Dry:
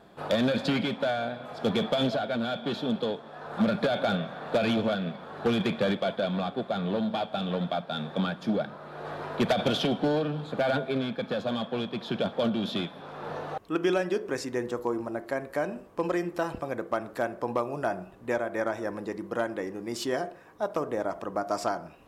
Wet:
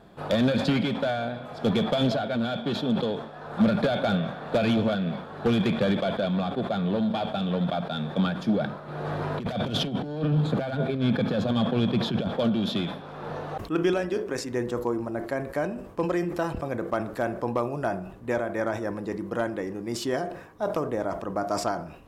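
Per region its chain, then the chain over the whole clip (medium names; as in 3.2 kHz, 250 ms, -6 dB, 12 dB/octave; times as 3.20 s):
8.88–12.28 s: high-pass 97 Hz + bass shelf 160 Hz +10.5 dB + compressor with a negative ratio -28 dBFS, ratio -0.5
13.93–14.51 s: peaking EQ 63 Hz -8 dB 2.2 oct + AM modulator 110 Hz, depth 20%
whole clip: bass shelf 180 Hz +9 dB; decay stretcher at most 84 dB/s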